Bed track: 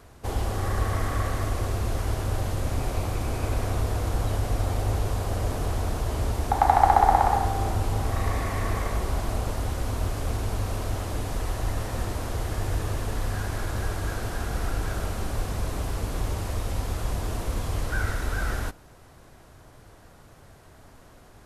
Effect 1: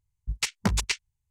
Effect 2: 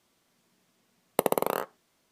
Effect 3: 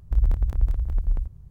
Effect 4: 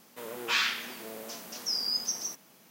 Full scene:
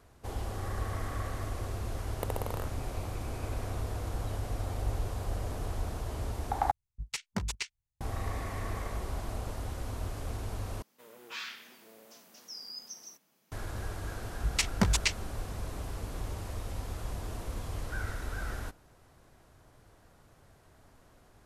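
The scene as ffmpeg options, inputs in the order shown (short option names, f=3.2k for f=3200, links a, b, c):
-filter_complex "[1:a]asplit=2[a][b];[0:a]volume=-9dB,asplit=3[c][d][e];[c]atrim=end=6.714[f];[a]atrim=end=1.3,asetpts=PTS-STARTPTS,volume=-9dB[g];[d]atrim=start=8.006:end=10.824[h];[4:a]atrim=end=2.7,asetpts=PTS-STARTPTS,volume=-13.5dB[i];[e]atrim=start=13.516[j];[2:a]atrim=end=2.11,asetpts=PTS-STARTPTS,volume=-12dB,afade=t=in:d=0.004:c=hsin,afade=t=out:st=2.106:d=0.004:c=hsin,adelay=1040[k];[3:a]atrim=end=1.5,asetpts=PTS-STARTPTS,volume=-16dB,afade=t=in:d=0.004:c=hsin,afade=t=out:st=1.496:d=0.004:c=hsin,adelay=4700[l];[b]atrim=end=1.3,asetpts=PTS-STARTPTS,volume=-1dB,afade=t=in:d=0.004:c=hsin,afade=t=out:st=1.296:d=0.004:c=hsin,adelay=14160[m];[f][g]acrossfade=d=0.004:c1=hsin:c2=hsin[n];[n][h]acrossfade=d=0.004:c1=hsin:c2=hsin[o];[o][i]acrossfade=d=0.004:c1=hsin:c2=hsin[p];[p][j]acrossfade=d=0.004:c1=hsin:c2=hsin[q];[q][k][l][m]amix=inputs=4:normalize=0"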